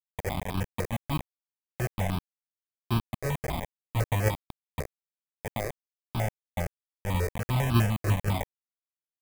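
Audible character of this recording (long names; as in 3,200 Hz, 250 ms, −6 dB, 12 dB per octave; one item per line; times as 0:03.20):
aliases and images of a low sample rate 1,400 Hz, jitter 0%
sample-and-hold tremolo, depth 85%
a quantiser's noise floor 6 bits, dither none
notches that jump at a steady rate 10 Hz 900–1,900 Hz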